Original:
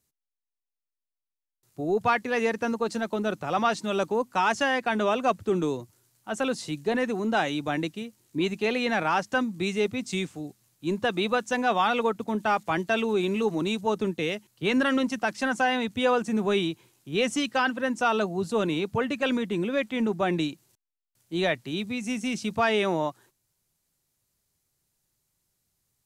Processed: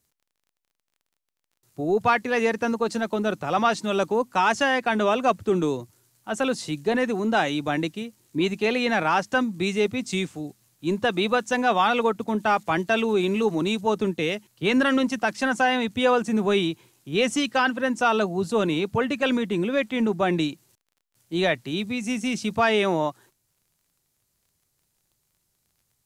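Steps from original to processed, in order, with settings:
surface crackle 28 per second −55 dBFS
level +3 dB

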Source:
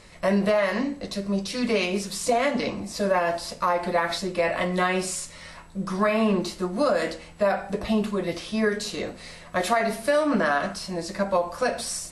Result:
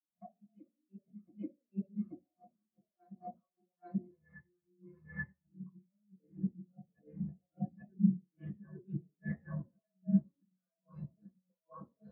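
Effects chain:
source passing by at 0:04.17, 25 m/s, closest 16 metres
camcorder AGC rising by 45 dB per second
Bessel low-pass filter 1,100 Hz, order 2
downward compressor 12 to 1, threshold −28 dBFS, peak gain reduction 9.5 dB
gate with flip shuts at −25 dBFS, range −27 dB
backwards echo 833 ms −6.5 dB
convolution reverb RT60 0.55 s, pre-delay 3 ms, DRR −5.5 dB
every bin expanded away from the loudest bin 2.5 to 1
level −6.5 dB

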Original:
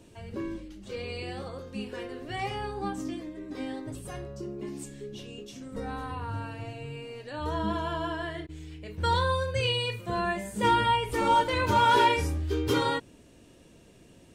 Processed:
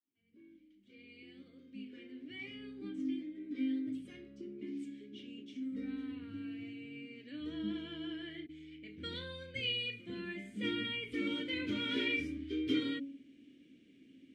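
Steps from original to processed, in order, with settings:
fade in at the beginning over 3.96 s
formant filter i
hum removal 138.2 Hz, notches 5
level +5 dB

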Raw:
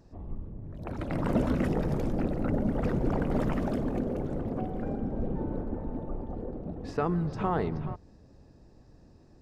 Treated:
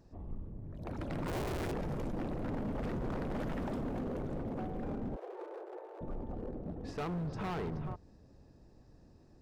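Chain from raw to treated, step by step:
0:01.27–0:01.72: sub-harmonics by changed cycles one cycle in 2, inverted
hard clipping −30 dBFS, distortion −8 dB
0:05.16–0:06.01: Butterworth high-pass 350 Hz 96 dB per octave
level −4 dB

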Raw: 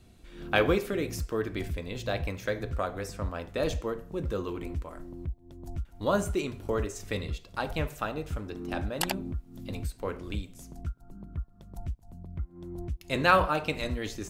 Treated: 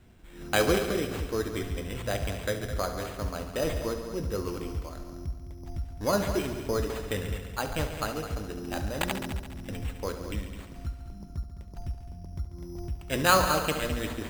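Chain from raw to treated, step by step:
bad sample-rate conversion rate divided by 8×, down none, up hold
on a send: echo machine with several playback heads 70 ms, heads all three, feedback 49%, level −13 dB

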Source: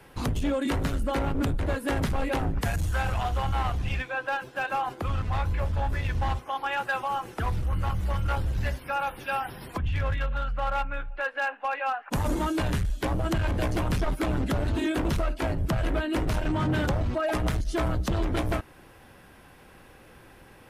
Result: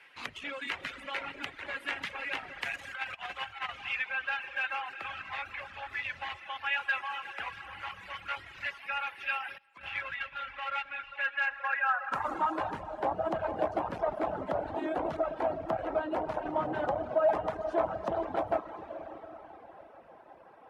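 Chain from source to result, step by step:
comb and all-pass reverb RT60 4.6 s, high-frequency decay 0.9×, pre-delay 45 ms, DRR 4 dB
0:02.91–0:03.69: compressor whose output falls as the input rises −27 dBFS, ratio −0.5
0:09.58–0:10.39: noise gate −27 dBFS, range −16 dB
reverb reduction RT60 0.93 s
band-pass filter sweep 2,300 Hz → 740 Hz, 0:11.31–0:12.89
level +5.5 dB

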